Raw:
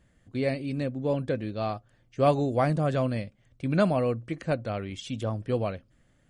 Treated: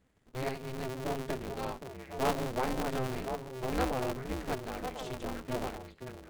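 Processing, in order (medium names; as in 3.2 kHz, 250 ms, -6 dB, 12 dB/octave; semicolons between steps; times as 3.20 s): repeats whose band climbs or falls 524 ms, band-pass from 260 Hz, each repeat 1.4 oct, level -3 dB; polarity switched at an audio rate 130 Hz; trim -8 dB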